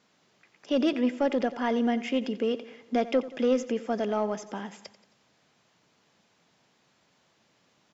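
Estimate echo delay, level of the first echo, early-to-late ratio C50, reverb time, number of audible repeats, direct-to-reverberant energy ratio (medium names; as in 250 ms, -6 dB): 89 ms, -16.0 dB, no reverb, no reverb, 4, no reverb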